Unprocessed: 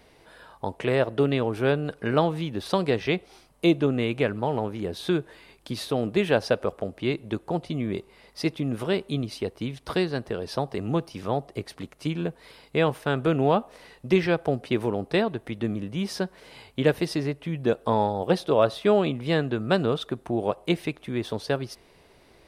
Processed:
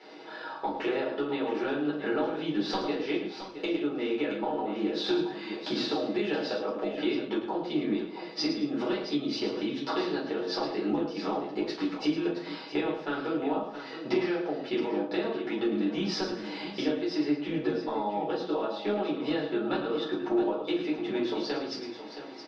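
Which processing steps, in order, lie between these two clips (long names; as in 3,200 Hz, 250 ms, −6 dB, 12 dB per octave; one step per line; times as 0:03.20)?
elliptic band-pass filter 230–5,100 Hz, stop band 40 dB
comb filter 6.3 ms, depth 39%
downward compressor 12 to 1, threshold −36 dBFS, peak gain reduction 22.5 dB
multi-tap delay 107/216/670 ms −9.5/−20/−10.5 dB
rectangular room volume 200 cubic metres, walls furnished, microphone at 4.2 metres
0:05.10–0:07.28: multiband upward and downward compressor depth 40%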